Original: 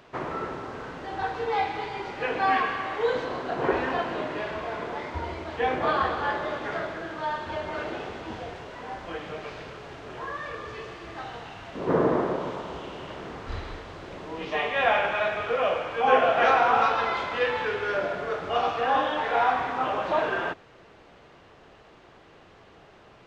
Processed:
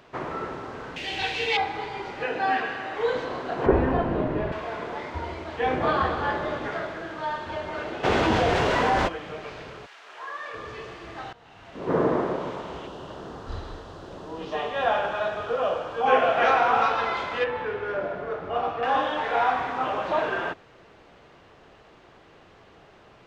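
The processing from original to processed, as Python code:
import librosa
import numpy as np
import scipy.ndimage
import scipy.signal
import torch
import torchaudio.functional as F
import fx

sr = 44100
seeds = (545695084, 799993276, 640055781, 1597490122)

y = fx.high_shelf_res(x, sr, hz=1800.0, db=12.0, q=3.0, at=(0.96, 1.57))
y = fx.notch_comb(y, sr, f0_hz=1100.0, at=(2.24, 2.96))
y = fx.tilt_eq(y, sr, slope=-4.5, at=(3.66, 4.52))
y = fx.low_shelf(y, sr, hz=300.0, db=7.0, at=(5.66, 6.69))
y = fx.env_flatten(y, sr, amount_pct=70, at=(8.03, 9.07), fade=0.02)
y = fx.highpass(y, sr, hz=fx.line((9.85, 1500.0), (10.53, 460.0)), slope=12, at=(9.85, 10.53), fade=0.02)
y = fx.peak_eq(y, sr, hz=2200.0, db=-13.5, octaves=0.51, at=(12.87, 16.06))
y = fx.lowpass(y, sr, hz=1200.0, slope=6, at=(17.44, 18.83))
y = fx.edit(y, sr, fx.fade_in_from(start_s=11.33, length_s=0.67, floor_db=-18.5), tone=tone)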